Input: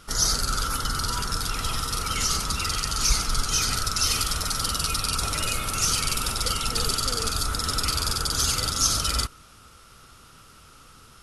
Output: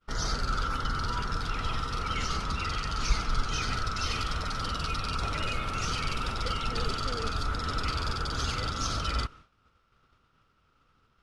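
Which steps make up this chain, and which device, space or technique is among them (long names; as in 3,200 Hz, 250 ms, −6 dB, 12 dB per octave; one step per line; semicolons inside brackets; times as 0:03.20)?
hearing-loss simulation (low-pass filter 3,000 Hz 12 dB per octave; downward expander −41 dBFS)
level −2 dB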